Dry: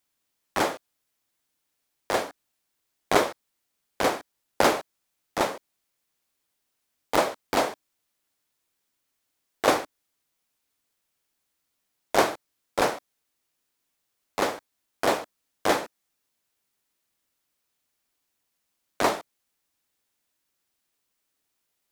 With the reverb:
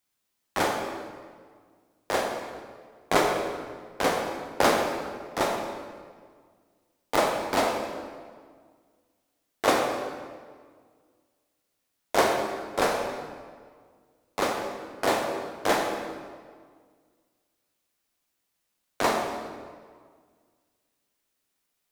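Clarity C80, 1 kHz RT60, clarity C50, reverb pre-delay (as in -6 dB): 5.0 dB, 1.7 s, 3.5 dB, 10 ms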